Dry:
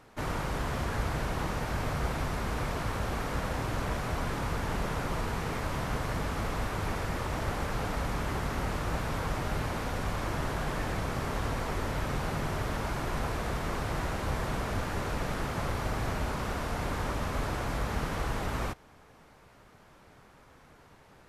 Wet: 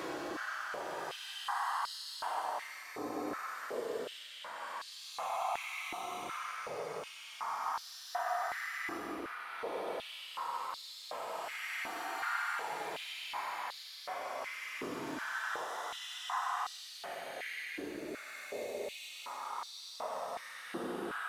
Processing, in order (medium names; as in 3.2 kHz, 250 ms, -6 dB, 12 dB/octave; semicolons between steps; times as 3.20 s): random holes in the spectrogram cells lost 32%; in parallel at -3 dB: peak limiter -30.5 dBFS, peak gain reduction 11.5 dB; on the sum: saturation -35 dBFS, distortion -7 dB; Paulstretch 28×, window 0.05 s, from 1.72 s; on a send at -12 dB: reverberation RT60 0.45 s, pre-delay 93 ms; on the sum: step-sequenced high-pass 2.7 Hz 330–4200 Hz; trim -3 dB